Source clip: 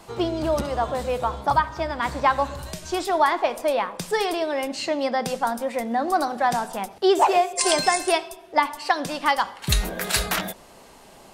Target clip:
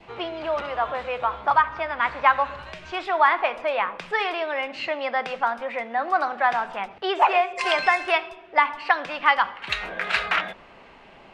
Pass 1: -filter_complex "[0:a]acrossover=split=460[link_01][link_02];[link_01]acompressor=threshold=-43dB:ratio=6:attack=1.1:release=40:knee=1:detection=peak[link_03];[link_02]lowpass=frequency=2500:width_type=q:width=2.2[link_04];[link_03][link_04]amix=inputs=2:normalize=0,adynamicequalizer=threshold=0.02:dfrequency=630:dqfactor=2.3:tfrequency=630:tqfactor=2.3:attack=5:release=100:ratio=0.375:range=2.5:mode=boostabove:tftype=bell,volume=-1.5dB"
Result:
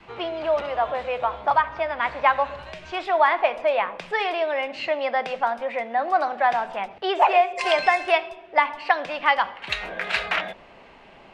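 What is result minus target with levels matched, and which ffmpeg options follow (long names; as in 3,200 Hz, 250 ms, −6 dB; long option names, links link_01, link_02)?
500 Hz band +3.0 dB
-filter_complex "[0:a]acrossover=split=460[link_01][link_02];[link_01]acompressor=threshold=-43dB:ratio=6:attack=1.1:release=40:knee=1:detection=peak[link_03];[link_02]lowpass=frequency=2500:width_type=q:width=2.2[link_04];[link_03][link_04]amix=inputs=2:normalize=0,adynamicequalizer=threshold=0.02:dfrequency=1300:dqfactor=2.3:tfrequency=1300:tqfactor=2.3:attack=5:release=100:ratio=0.375:range=2.5:mode=boostabove:tftype=bell,volume=-1.5dB"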